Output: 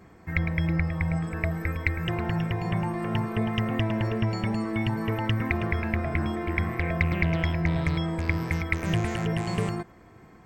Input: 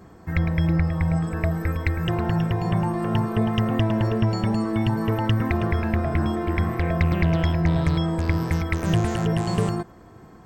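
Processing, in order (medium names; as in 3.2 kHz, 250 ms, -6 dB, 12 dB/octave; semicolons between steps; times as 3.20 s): peaking EQ 2.2 kHz +9.5 dB 0.57 oct; trim -5 dB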